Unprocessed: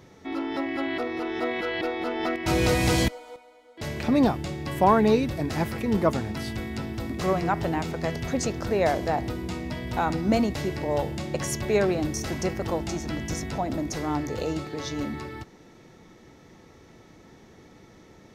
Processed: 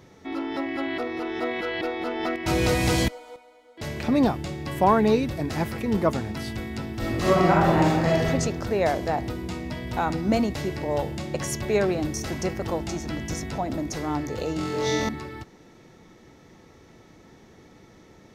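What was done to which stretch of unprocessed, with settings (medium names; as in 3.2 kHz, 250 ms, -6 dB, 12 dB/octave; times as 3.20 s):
6.95–8.26 s: reverb throw, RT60 1.1 s, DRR -5.5 dB
14.56–15.09 s: flutter echo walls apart 3.9 m, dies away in 1.2 s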